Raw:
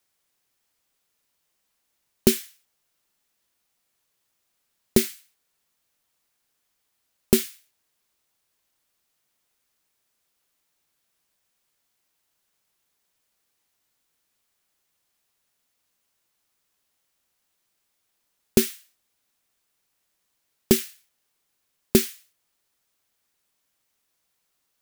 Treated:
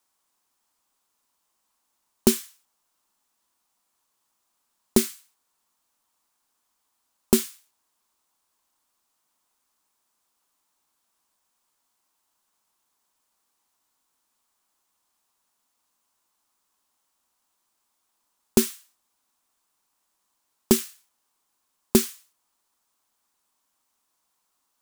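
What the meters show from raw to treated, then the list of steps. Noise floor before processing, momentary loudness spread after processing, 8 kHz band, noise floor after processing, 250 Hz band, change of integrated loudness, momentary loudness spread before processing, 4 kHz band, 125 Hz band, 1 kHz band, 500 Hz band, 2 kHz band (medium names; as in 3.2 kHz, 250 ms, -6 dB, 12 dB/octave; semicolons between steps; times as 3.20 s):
-75 dBFS, 10 LU, +1.0 dB, -76 dBFS, +0.5 dB, -0.5 dB, 10 LU, -1.5 dB, -3.5 dB, +5.0 dB, -1.5 dB, -3.0 dB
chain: graphic EQ 125/250/500/1000/2000/8000 Hz -7/+5/-3/+11/-4/+4 dB; trim -2 dB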